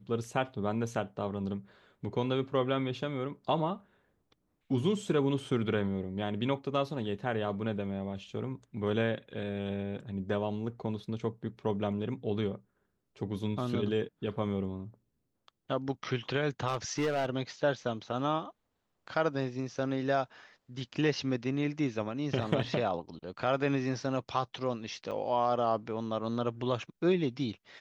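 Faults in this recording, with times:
0:16.67–0:17.29: clipping −26 dBFS
0:25.11–0:25.12: drop-out 6.4 ms

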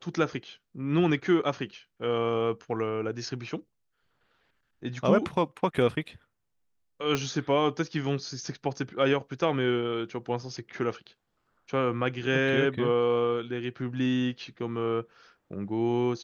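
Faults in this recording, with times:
0:07.15: click −13 dBFS

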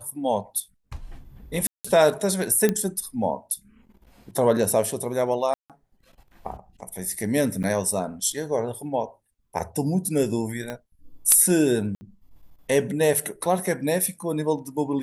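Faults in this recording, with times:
0:01.67–0:01.84: drop-out 175 ms
0:02.69: click −8 dBFS
0:05.54–0:05.70: drop-out 157 ms
0:07.63–0:07.64: drop-out 8.1 ms
0:10.70: click −18 dBFS
0:11.95–0:12.01: drop-out 60 ms

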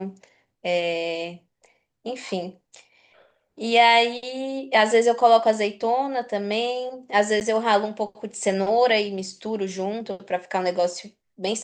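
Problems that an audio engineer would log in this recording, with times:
0:07.40–0:07.41: drop-out 9.7 ms

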